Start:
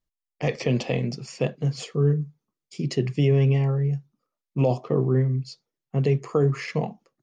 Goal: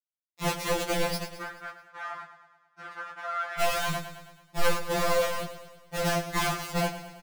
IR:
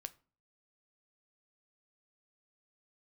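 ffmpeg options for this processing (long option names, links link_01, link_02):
-filter_complex "[0:a]aecho=1:1:7.3:0.8,acontrast=38,flanger=delay=5.8:depth=4.7:regen=59:speed=0.76:shape=triangular,acrusher=bits=3:mix=0:aa=0.000001,aeval=exprs='(mod(5.96*val(0)+1,2)-1)/5.96':channel_layout=same,asplit=3[link_01][link_02][link_03];[link_01]afade=type=out:start_time=1.4:duration=0.02[link_04];[link_02]bandpass=frequency=1400:width_type=q:width=4.4:csg=0,afade=type=in:start_time=1.4:duration=0.02,afade=type=out:start_time=3.59:duration=0.02[link_05];[link_03]afade=type=in:start_time=3.59:duration=0.02[link_06];[link_04][link_05][link_06]amix=inputs=3:normalize=0,flanger=delay=15.5:depth=7.9:speed=2.5,asoftclip=type=tanh:threshold=-19dB,aecho=1:1:108|216|324|432|540|648:0.251|0.143|0.0816|0.0465|0.0265|0.0151,afftfilt=real='re*2.83*eq(mod(b,8),0)':imag='im*2.83*eq(mod(b,8),0)':win_size=2048:overlap=0.75,volume=2dB"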